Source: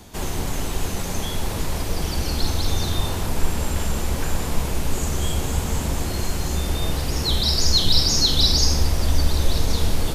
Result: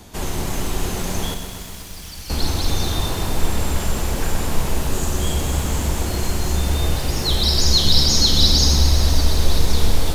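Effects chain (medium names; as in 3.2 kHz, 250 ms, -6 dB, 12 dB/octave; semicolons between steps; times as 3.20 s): 1.34–2.30 s: amplifier tone stack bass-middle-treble 5-5-5; 4.77–5.18 s: band-stop 2.2 kHz, Q 7.8; bit-crushed delay 126 ms, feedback 80%, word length 7-bit, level -9 dB; trim +1.5 dB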